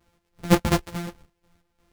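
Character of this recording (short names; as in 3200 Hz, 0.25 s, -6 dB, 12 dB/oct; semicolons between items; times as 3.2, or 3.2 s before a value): a buzz of ramps at a fixed pitch in blocks of 256 samples; chopped level 2.8 Hz, depth 65%, duty 50%; a shimmering, thickened sound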